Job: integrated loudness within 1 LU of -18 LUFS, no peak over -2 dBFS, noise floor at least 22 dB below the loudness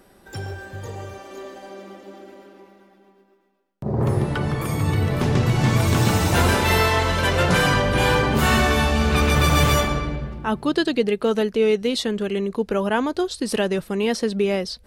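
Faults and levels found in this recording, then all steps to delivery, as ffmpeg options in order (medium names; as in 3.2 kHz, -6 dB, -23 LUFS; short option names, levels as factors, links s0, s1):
loudness -20.5 LUFS; peak level -5.5 dBFS; loudness target -18.0 LUFS
-> -af "volume=1.33"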